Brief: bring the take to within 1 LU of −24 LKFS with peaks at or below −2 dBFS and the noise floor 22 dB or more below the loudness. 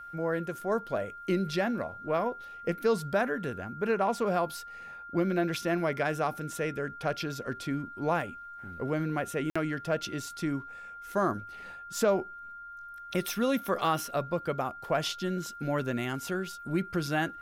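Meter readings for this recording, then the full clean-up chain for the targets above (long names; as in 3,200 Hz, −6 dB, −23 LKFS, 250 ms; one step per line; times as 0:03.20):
number of dropouts 1; longest dropout 55 ms; interfering tone 1,400 Hz; level of the tone −42 dBFS; integrated loudness −31.5 LKFS; sample peak −15.0 dBFS; target loudness −24.0 LKFS
→ repair the gap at 0:09.50, 55 ms
notch filter 1,400 Hz, Q 30
level +7.5 dB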